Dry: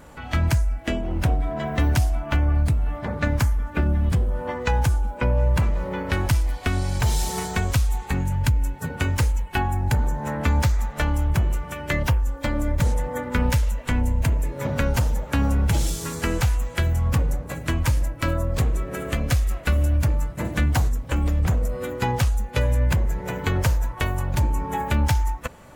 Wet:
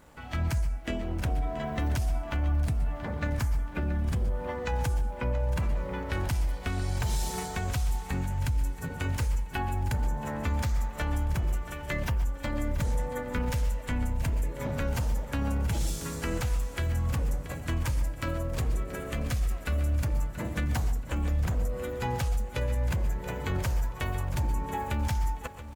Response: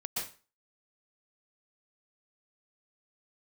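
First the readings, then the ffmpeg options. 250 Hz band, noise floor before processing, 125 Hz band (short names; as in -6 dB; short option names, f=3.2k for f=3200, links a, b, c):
-7.5 dB, -38 dBFS, -7.5 dB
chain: -filter_complex "[0:a]alimiter=limit=-15.5dB:level=0:latency=1:release=18,aeval=exprs='sgn(val(0))*max(abs(val(0))-0.00224,0)':c=same,acrusher=bits=10:mix=0:aa=0.000001,aecho=1:1:679|1358|2037|2716:0.2|0.0758|0.0288|0.0109,asplit=2[a][b];[1:a]atrim=start_sample=2205,afade=t=out:st=0.2:d=0.01,atrim=end_sample=9261[c];[b][c]afir=irnorm=-1:irlink=0,volume=-11.5dB[d];[a][d]amix=inputs=2:normalize=0,volume=-7.5dB"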